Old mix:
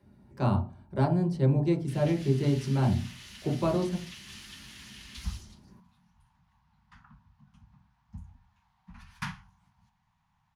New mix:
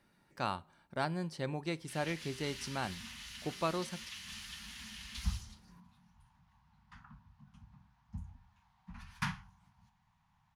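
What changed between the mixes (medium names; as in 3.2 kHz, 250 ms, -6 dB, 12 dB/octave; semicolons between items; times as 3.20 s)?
speech +4.5 dB; reverb: off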